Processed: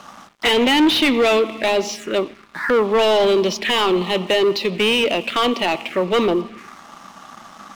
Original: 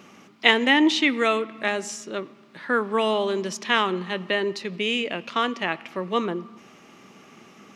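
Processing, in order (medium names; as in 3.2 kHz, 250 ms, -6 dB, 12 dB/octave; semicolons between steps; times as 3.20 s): touch-sensitive phaser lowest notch 350 Hz, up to 1.6 kHz, full sweep at -27 dBFS; overdrive pedal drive 30 dB, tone 2.5 kHz, clips at -3.5 dBFS; crossover distortion -39 dBFS; trim -2.5 dB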